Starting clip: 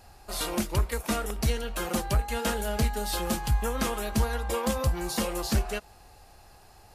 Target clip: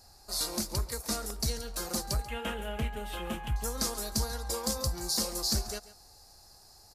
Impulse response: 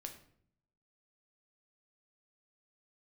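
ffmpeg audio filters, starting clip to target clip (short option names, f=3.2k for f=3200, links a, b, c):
-af "asetnsamples=n=441:p=0,asendcmd='2.26 highshelf g -6.5;3.56 highshelf g 8.5',highshelf=f=3.7k:t=q:w=3:g=7,aecho=1:1:138:0.141,volume=-7dB"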